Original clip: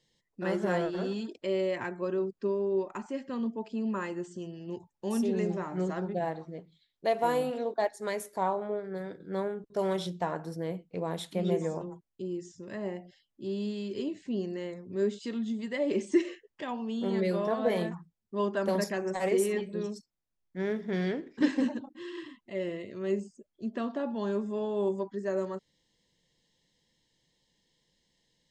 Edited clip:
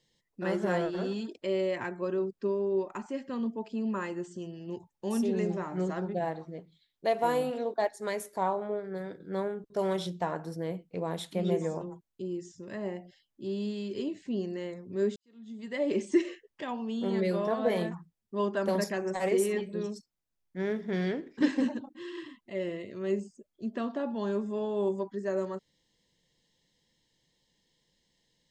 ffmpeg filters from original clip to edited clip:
-filter_complex "[0:a]asplit=2[s0][s1];[s0]atrim=end=15.16,asetpts=PTS-STARTPTS,afade=t=out:st=15.156:d=0.004:c=hsin[s2];[s1]atrim=start=15.16,asetpts=PTS-STARTPTS,afade=t=in:d=0.64:c=qua[s3];[s2][s3]concat=n=2:v=0:a=1"

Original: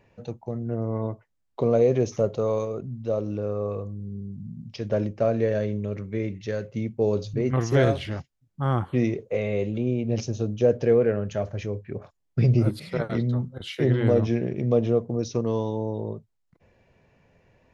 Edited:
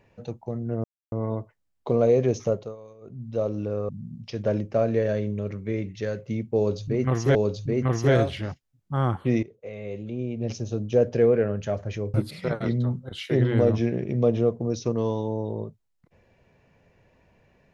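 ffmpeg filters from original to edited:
-filter_complex "[0:a]asplit=8[s0][s1][s2][s3][s4][s5][s6][s7];[s0]atrim=end=0.84,asetpts=PTS-STARTPTS,afade=t=out:st=0.836:d=0.004:c=hsin,apad=pad_dur=0.28[s8];[s1]atrim=start=0.84:end=2.48,asetpts=PTS-STARTPTS,afade=t=in:d=0.004:c=hsin,afade=t=out:st=1.35:d=0.29:silence=0.1[s9];[s2]atrim=start=2.48:end=2.72,asetpts=PTS-STARTPTS,volume=0.1[s10];[s3]atrim=start=2.72:end=3.612,asetpts=PTS-STARTPTS,afade=t=in:d=0.29:silence=0.1[s11];[s4]atrim=start=4.348:end=7.812[s12];[s5]atrim=start=7.028:end=9.11,asetpts=PTS-STARTPTS,afade=t=out:st=2.078:d=0.004:c=hsin:silence=0.125893[s13];[s6]atrim=start=9.11:end=11.822,asetpts=PTS-STARTPTS,afade=t=in:d=1.62:silence=0.125893[s14];[s7]atrim=start=12.628[s15];[s8][s9][s10][s11]concat=n=4:v=0:a=1[s16];[s16][s12]acrossfade=d=0.004:c1=hsin:c2=hsin[s17];[s13][s14]concat=n=2:v=0:a=1[s18];[s17][s18]acrossfade=d=0.004:c1=hsin:c2=hsin[s19];[s19][s15]acrossfade=d=0.004:c1=hsin:c2=hsin"

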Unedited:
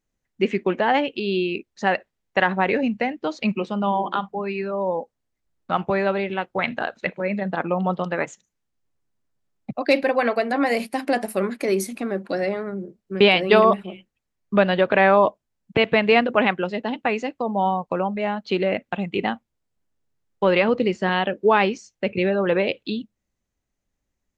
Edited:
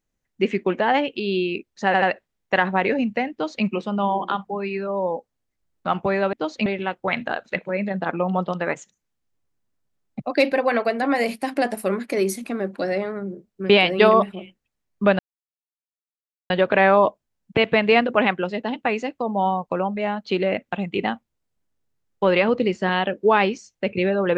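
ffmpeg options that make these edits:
-filter_complex "[0:a]asplit=6[s0][s1][s2][s3][s4][s5];[s0]atrim=end=1.942[s6];[s1]atrim=start=1.858:end=1.942[s7];[s2]atrim=start=1.858:end=6.172[s8];[s3]atrim=start=3.158:end=3.492[s9];[s4]atrim=start=6.168:end=14.7,asetpts=PTS-STARTPTS,afade=t=out:st=8.528:d=0.004:c=hsin,apad=pad_dur=1.31[s10];[s5]atrim=start=14.7,asetpts=PTS-STARTPTS,afade=t=in:d=0.004:c=hsin[s11];[s6][s7]acrossfade=d=0.004:c1=hsin:c2=hsin[s12];[s12][s8]acrossfade=d=0.004:c1=hsin:c2=hsin[s13];[s13][s9]acrossfade=d=0.004:c1=hsin:c2=hsin[s14];[s10][s11]concat=n=2:v=0:a=1[s15];[s14][s15]acrossfade=d=0.004:c1=hsin:c2=hsin"

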